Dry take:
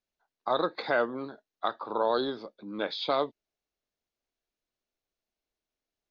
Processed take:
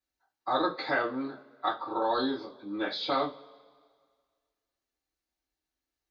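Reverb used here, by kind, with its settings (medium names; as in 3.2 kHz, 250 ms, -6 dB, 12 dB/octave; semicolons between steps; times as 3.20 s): two-slope reverb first 0.23 s, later 1.8 s, from -27 dB, DRR -9.5 dB; trim -9 dB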